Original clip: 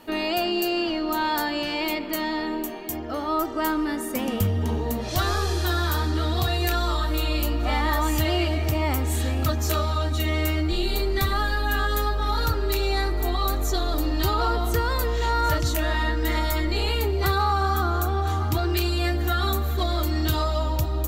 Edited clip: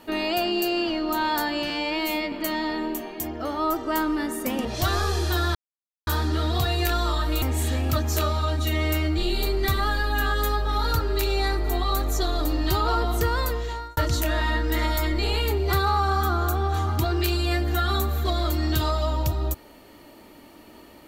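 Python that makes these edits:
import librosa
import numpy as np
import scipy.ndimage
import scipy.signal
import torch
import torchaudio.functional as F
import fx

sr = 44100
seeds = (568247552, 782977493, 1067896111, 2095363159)

y = fx.edit(x, sr, fx.stretch_span(start_s=1.7, length_s=0.31, factor=2.0),
    fx.cut(start_s=4.34, length_s=0.65),
    fx.insert_silence(at_s=5.89, length_s=0.52),
    fx.cut(start_s=7.24, length_s=1.71),
    fx.fade_out_span(start_s=14.93, length_s=0.57), tone=tone)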